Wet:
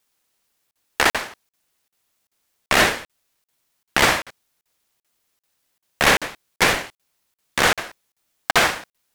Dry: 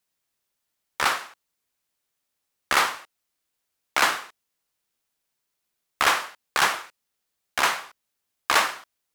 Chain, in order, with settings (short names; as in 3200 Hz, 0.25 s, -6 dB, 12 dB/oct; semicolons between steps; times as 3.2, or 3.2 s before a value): maximiser +11.5 dB; crackling interface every 0.39 s, samples 2048, zero, from 0.71; ring modulator with a swept carrier 530 Hz, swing 20%, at 0.3 Hz